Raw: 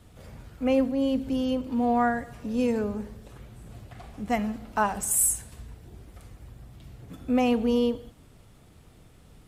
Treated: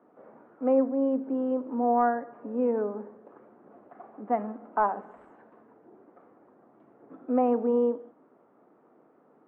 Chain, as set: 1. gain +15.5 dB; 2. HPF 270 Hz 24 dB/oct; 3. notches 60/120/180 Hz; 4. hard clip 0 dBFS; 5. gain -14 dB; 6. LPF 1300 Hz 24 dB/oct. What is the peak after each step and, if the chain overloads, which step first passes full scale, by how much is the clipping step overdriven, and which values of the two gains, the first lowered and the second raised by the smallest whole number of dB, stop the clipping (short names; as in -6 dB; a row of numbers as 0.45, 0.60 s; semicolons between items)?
+4.5, +4.5, +4.5, 0.0, -14.0, -13.0 dBFS; step 1, 4.5 dB; step 1 +10.5 dB, step 5 -9 dB